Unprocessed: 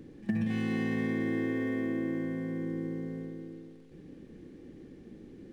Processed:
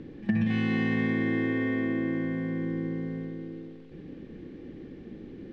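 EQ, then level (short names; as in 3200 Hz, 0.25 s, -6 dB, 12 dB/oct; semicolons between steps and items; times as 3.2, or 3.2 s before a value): Chebyshev low-pass 3400 Hz, order 2; dynamic EQ 440 Hz, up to -4 dB, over -44 dBFS, Q 0.77; +7.0 dB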